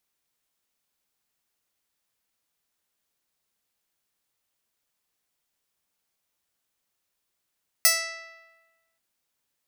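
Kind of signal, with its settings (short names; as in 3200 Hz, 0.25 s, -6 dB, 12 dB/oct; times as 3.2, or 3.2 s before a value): plucked string E5, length 1.13 s, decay 1.29 s, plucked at 0.18, bright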